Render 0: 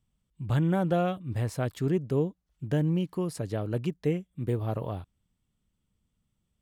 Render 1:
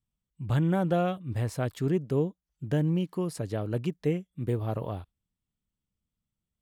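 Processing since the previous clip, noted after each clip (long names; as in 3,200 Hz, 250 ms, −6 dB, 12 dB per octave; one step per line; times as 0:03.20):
noise reduction from a noise print of the clip's start 10 dB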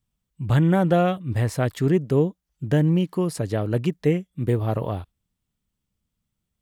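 dynamic equaliser 1,900 Hz, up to +5 dB, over −58 dBFS, Q 6.1
level +7 dB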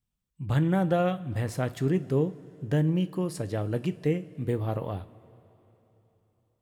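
coupled-rooms reverb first 0.27 s, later 3.6 s, from −19 dB, DRR 10.5 dB
level −6 dB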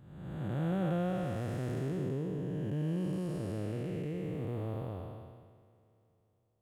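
spectrum smeared in time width 607 ms
level −3.5 dB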